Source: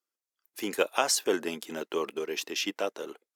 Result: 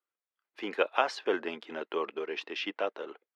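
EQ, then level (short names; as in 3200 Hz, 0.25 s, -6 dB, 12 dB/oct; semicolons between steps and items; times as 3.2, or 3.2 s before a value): HPF 660 Hz 6 dB/oct; LPF 8200 Hz 12 dB/oct; air absorption 370 m; +4.0 dB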